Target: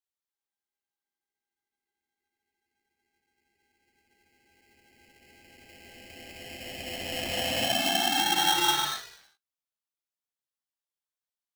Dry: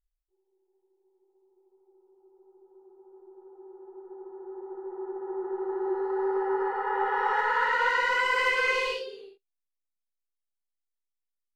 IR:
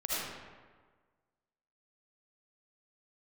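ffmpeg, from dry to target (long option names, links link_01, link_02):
-af "highpass=frequency=2000:width_type=q:width=1.8,aeval=exprs='val(0)*sgn(sin(2*PI*1200*n/s))':channel_layout=same,volume=-1.5dB"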